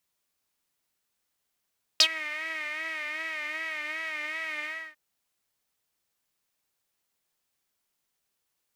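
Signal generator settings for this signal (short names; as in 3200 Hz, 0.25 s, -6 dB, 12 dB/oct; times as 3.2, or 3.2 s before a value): synth patch with vibrato D#5, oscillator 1 saw, interval -12 st, detune 16 cents, sub -6 dB, noise -7.5 dB, filter bandpass, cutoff 1900 Hz, Q 7.9, filter envelope 1.5 oct, filter decay 0.07 s, filter sustain 10%, attack 3 ms, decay 0.07 s, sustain -20 dB, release 0.30 s, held 2.65 s, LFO 2.6 Hz, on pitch 65 cents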